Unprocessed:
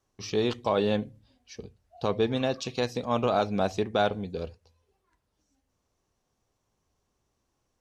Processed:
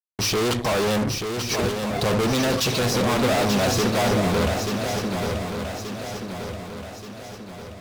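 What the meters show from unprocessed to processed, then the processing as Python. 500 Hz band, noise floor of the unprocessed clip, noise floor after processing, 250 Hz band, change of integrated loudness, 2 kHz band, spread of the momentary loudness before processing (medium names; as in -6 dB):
+5.0 dB, -78 dBFS, -39 dBFS, +8.5 dB, +5.5 dB, +11.5 dB, 16 LU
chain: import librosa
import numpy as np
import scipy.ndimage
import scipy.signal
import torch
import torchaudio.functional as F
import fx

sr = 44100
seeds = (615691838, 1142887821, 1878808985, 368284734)

p1 = fx.level_steps(x, sr, step_db=19)
p2 = x + F.gain(torch.from_numpy(p1), -1.5).numpy()
p3 = fx.fuzz(p2, sr, gain_db=45.0, gate_db=-51.0)
p4 = fx.echo_swing(p3, sr, ms=1179, ratio=3, feedback_pct=49, wet_db=-6)
y = F.gain(torch.from_numpy(p4), -7.5).numpy()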